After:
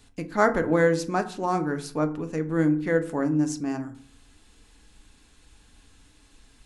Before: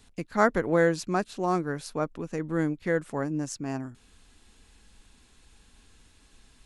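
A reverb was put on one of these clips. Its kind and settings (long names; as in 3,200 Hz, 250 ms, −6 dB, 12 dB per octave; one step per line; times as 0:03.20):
feedback delay network reverb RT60 0.5 s, low-frequency decay 1.4×, high-frequency decay 0.5×, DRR 7 dB
level +1 dB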